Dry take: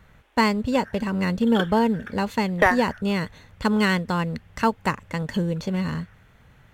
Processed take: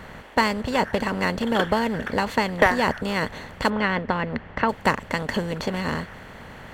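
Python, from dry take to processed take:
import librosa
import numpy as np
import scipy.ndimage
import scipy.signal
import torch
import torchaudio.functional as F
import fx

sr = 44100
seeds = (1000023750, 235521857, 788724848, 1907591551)

y = fx.bin_compress(x, sr, power=0.6)
y = fx.lowpass(y, sr, hz=2600.0, slope=12, at=(3.69, 4.68), fade=0.02)
y = fx.hpss(y, sr, part='percussive', gain_db=7)
y = y * 10.0 ** (-7.0 / 20.0)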